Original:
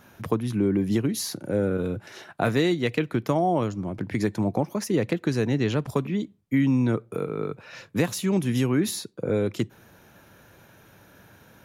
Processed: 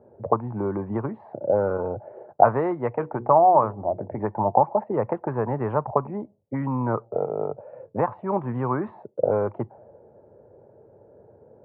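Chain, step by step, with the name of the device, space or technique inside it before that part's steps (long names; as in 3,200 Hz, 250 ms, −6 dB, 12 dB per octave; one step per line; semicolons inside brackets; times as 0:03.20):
envelope filter bass rig (envelope-controlled low-pass 430–1,100 Hz up, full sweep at −20 dBFS; loudspeaker in its box 73–2,300 Hz, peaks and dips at 180 Hz −8 dB, 290 Hz −8 dB, 600 Hz +7 dB, 850 Hz +9 dB)
0:02.96–0:04.19: mains-hum notches 60/120/180/240/300/360/420/480 Hz
level −1.5 dB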